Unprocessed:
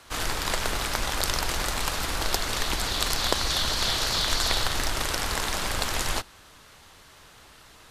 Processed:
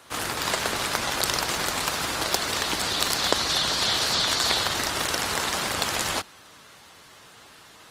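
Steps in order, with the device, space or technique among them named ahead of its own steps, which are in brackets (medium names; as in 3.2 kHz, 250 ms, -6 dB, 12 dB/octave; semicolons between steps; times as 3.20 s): noise-suppressed video call (high-pass 120 Hz 12 dB/octave; spectral gate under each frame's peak -25 dB strong; trim +2.5 dB; Opus 24 kbps 48 kHz)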